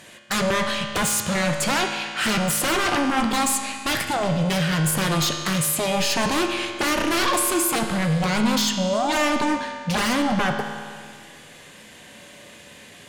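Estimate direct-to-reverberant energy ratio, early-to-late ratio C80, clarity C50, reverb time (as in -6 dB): 3.5 dB, 6.5 dB, 5.0 dB, 2.0 s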